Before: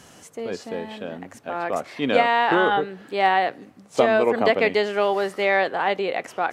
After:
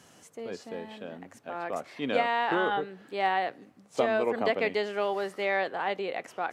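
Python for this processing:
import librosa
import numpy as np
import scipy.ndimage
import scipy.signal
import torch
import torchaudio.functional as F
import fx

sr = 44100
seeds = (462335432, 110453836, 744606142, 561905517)

y = scipy.signal.sosfilt(scipy.signal.butter(2, 81.0, 'highpass', fs=sr, output='sos'), x)
y = y * librosa.db_to_amplitude(-8.0)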